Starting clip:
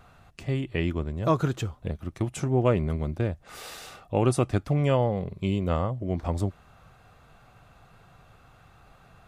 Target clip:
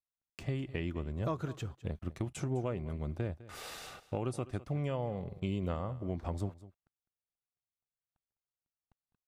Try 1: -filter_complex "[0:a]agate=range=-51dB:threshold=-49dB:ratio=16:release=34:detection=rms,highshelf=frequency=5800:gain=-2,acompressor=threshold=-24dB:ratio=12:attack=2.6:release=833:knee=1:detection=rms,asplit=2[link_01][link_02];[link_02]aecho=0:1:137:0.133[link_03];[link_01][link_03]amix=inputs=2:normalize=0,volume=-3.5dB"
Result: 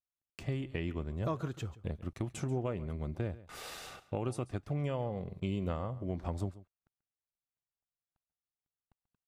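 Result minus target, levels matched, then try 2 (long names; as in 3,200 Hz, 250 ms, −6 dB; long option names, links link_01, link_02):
echo 68 ms early
-filter_complex "[0:a]agate=range=-51dB:threshold=-49dB:ratio=16:release=34:detection=rms,highshelf=frequency=5800:gain=-2,acompressor=threshold=-24dB:ratio=12:attack=2.6:release=833:knee=1:detection=rms,asplit=2[link_01][link_02];[link_02]aecho=0:1:205:0.133[link_03];[link_01][link_03]amix=inputs=2:normalize=0,volume=-3.5dB"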